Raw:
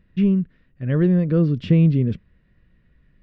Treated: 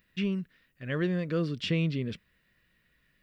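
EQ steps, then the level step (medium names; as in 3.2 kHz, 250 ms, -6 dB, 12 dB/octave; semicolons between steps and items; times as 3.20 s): tilt EQ +4.5 dB/octave; bass shelf 70 Hz +7 dB; band-stop 870 Hz, Q 22; -3.0 dB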